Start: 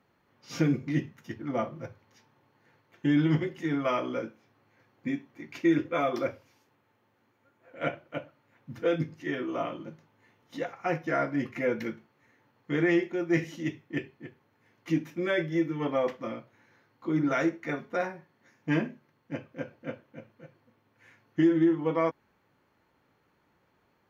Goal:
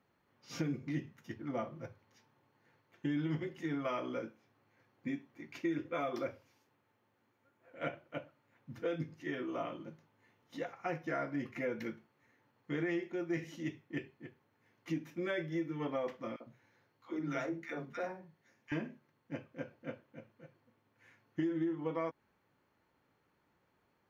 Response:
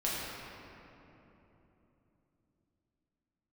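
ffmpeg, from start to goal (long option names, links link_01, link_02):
-filter_complex "[0:a]acompressor=threshold=-27dB:ratio=3,asettb=1/sr,asplit=3[link_01][link_02][link_03];[link_01]atrim=end=16.364[link_04];[link_02]atrim=start=16.36:end=18.72,asetpts=PTS-STARTPTS,afade=type=in:duration=0.004:curve=qsin,afade=type=out:start_time=2.356:duration=0.004:curve=qsin,acrossover=split=240|1300[link_05][link_06][link_07];[link_06]adelay=40[link_08];[link_05]adelay=100[link_09];[link_09][link_08][link_07]amix=inputs=3:normalize=0,atrim=end_sample=104076[link_10];[link_03]atrim=start=18.716[link_11];[link_04][link_10]acrossfade=duration=0.004:curve1=hsin:curve2=qsin[link_12];[link_12][link_11]acrossfade=duration=0.004:curve1=qsin:curve2=hsin,volume=-6dB"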